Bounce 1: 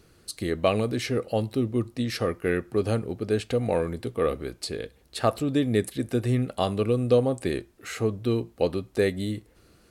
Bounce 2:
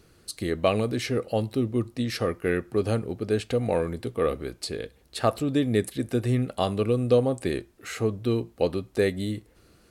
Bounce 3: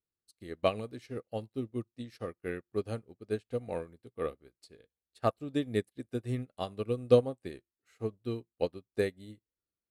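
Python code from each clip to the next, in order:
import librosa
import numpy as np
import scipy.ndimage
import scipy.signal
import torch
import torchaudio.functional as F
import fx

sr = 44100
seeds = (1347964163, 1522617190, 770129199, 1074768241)

y1 = x
y2 = fx.upward_expand(y1, sr, threshold_db=-43.0, expansion=2.5)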